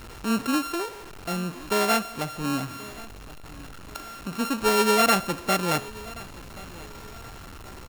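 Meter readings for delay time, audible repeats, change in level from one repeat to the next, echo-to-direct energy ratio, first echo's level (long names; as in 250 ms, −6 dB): 1,078 ms, 2, −7.5 dB, −19.0 dB, −20.0 dB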